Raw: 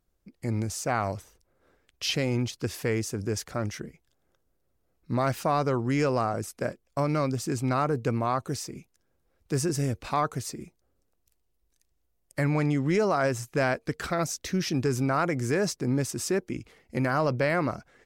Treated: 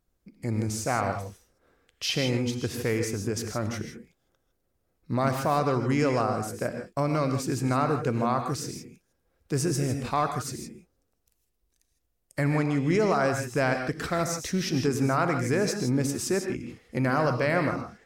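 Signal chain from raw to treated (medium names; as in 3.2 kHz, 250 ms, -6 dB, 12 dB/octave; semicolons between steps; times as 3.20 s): gated-style reverb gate 180 ms rising, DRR 5.5 dB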